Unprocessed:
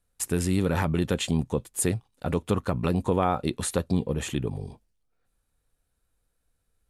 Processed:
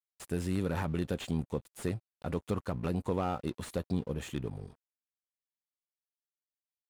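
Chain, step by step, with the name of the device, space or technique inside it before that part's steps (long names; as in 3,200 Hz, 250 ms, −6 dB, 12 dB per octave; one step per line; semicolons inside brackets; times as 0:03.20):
early transistor amplifier (dead-zone distortion −48 dBFS; slew-rate limiting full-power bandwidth 86 Hz)
level −7 dB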